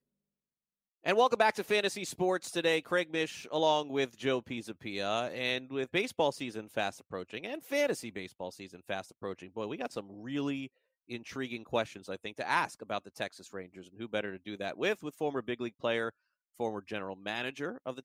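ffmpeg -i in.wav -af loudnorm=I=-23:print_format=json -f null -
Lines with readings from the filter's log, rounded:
"input_i" : "-34.3",
"input_tp" : "-14.2",
"input_lra" : "6.5",
"input_thresh" : "-44.5",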